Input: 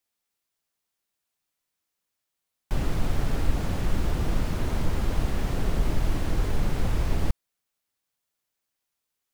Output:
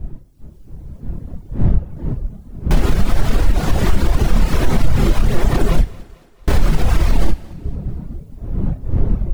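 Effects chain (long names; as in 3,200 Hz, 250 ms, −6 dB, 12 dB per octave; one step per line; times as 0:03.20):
wind on the microphone 110 Hz −36 dBFS
0:05.81–0:06.48: noise gate −15 dBFS, range −38 dB
automatic gain control gain up to 6 dB
multi-voice chorus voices 6, 1.5 Hz, delay 29 ms, depth 3 ms
reverb reduction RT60 0.91 s
in parallel at +3 dB: downward compressor, threshold −25 dBFS, peak gain reduction 14 dB
on the sum: feedback echo with a high-pass in the loop 223 ms, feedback 53%, high-pass 190 Hz, level −23 dB
brickwall limiter −12.5 dBFS, peak gain reduction 9 dB
on a send at −12 dB: convolution reverb, pre-delay 3 ms
on the sum: level +8 dB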